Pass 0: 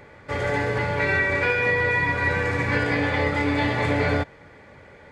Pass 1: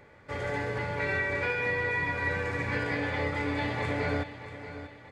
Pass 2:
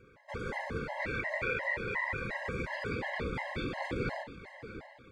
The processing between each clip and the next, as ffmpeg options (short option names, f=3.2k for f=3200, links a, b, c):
-af "aecho=1:1:635|1270|1905|2540:0.237|0.0996|0.0418|0.0176,volume=-8dB"
-af "afftfilt=real='hypot(re,im)*cos(2*PI*random(0))':imag='hypot(re,im)*sin(2*PI*random(1))':win_size=512:overlap=0.75,afftfilt=real='re*gt(sin(2*PI*2.8*pts/sr)*(1-2*mod(floor(b*sr/1024/540),2)),0)':imag='im*gt(sin(2*PI*2.8*pts/sr)*(1-2*mod(floor(b*sr/1024/540),2)),0)':win_size=1024:overlap=0.75,volume=4dB"